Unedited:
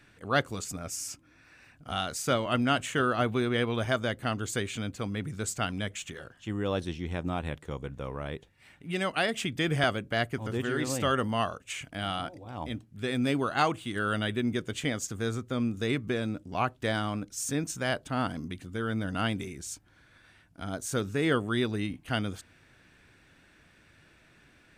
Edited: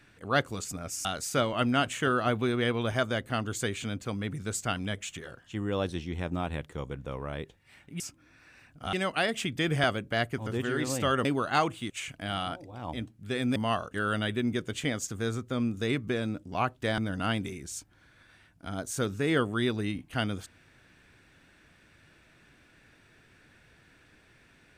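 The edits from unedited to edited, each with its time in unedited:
0:01.05–0:01.98: move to 0:08.93
0:11.25–0:11.63: swap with 0:13.29–0:13.94
0:16.98–0:18.93: remove

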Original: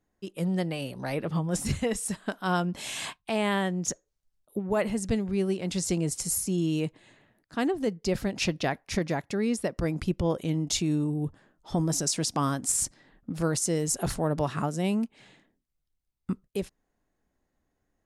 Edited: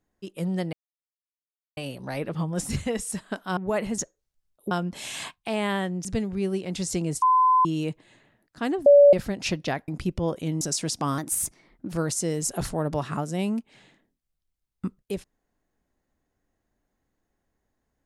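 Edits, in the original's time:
0:00.73: splice in silence 1.04 s
0:02.53–0:03.87: swap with 0:04.60–0:05.01
0:06.18–0:06.61: beep over 1,020 Hz −15.5 dBFS
0:07.82–0:08.09: beep over 573 Hz −9.5 dBFS
0:08.84–0:09.90: remove
0:10.63–0:11.96: remove
0:12.53–0:13.37: play speed 114%

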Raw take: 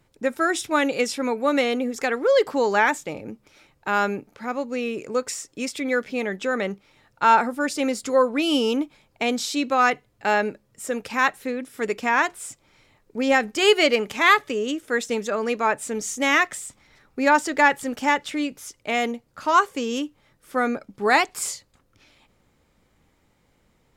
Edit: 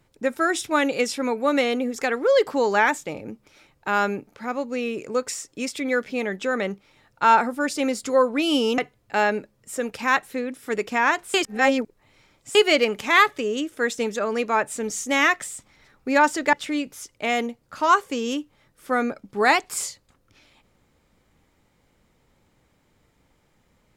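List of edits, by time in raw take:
0:08.78–0:09.89: remove
0:12.45–0:13.66: reverse
0:17.64–0:18.18: remove

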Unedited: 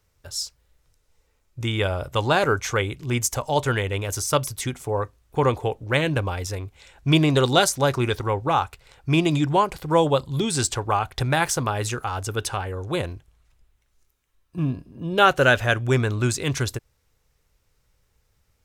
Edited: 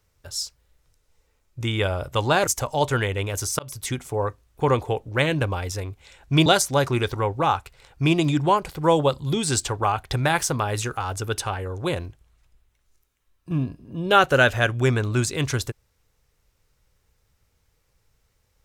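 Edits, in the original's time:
0:02.47–0:03.22: remove
0:04.34–0:04.59: fade in
0:07.21–0:07.53: remove

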